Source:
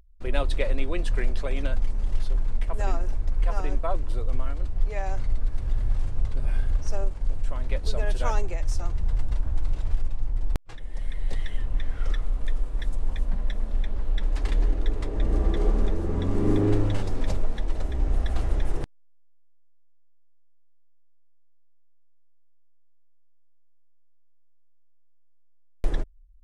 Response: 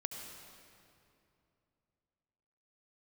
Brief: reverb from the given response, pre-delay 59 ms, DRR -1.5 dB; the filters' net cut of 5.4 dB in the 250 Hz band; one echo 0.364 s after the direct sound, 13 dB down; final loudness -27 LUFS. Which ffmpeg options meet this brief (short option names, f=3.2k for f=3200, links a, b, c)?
-filter_complex "[0:a]equalizer=f=250:t=o:g=-7.5,aecho=1:1:364:0.224,asplit=2[a][b];[1:a]atrim=start_sample=2205,adelay=59[c];[b][c]afir=irnorm=-1:irlink=0,volume=2dB[d];[a][d]amix=inputs=2:normalize=0,volume=-1dB"